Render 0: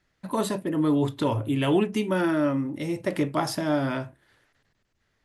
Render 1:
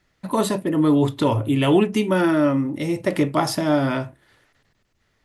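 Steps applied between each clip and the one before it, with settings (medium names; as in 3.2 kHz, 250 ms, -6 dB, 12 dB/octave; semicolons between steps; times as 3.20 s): band-stop 1.6 kHz, Q 19; trim +5.5 dB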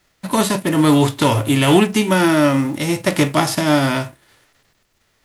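formants flattened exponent 0.6; trim +4 dB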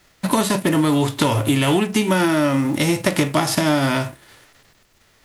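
compression, threshold -21 dBFS, peak gain reduction 12.5 dB; trim +6 dB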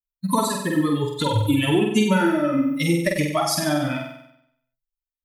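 expander on every frequency bin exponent 3; on a send: flutter echo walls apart 8.1 m, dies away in 0.76 s; on the sum: trim +2 dB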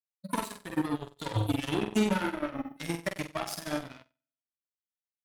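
flange 1.5 Hz, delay 9.2 ms, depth 1.1 ms, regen +77%; Chebyshev shaper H 7 -17 dB, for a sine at -10.5 dBFS; trim -5.5 dB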